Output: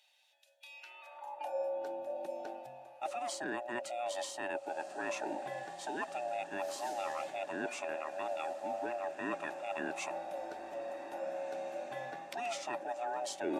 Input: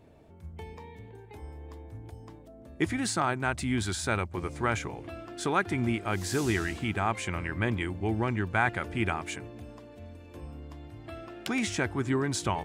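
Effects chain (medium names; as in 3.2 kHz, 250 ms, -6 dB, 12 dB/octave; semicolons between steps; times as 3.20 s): split-band scrambler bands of 500 Hz; reverse; compression 6:1, threshold -40 dBFS, peak gain reduction 18 dB; reverse; high-pass sweep 3.6 kHz -> 340 Hz, 0.59–1.77 s; echo that smears into a reverb 1600 ms, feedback 55%, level -13.5 dB; tape speed -7%; trim +2 dB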